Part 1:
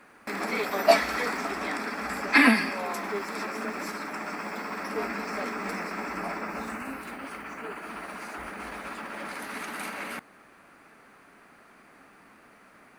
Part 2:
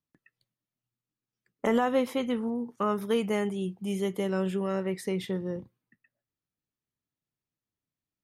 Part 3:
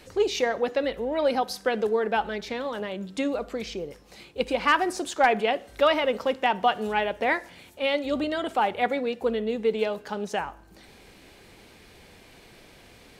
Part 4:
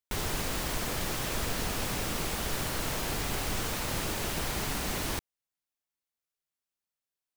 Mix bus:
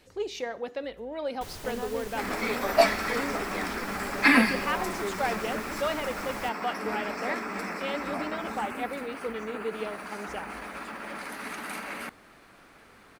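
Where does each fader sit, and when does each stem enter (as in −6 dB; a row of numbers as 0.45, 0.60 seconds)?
−1.0, −12.0, −9.0, −10.5 decibels; 1.90, 0.00, 0.00, 1.30 seconds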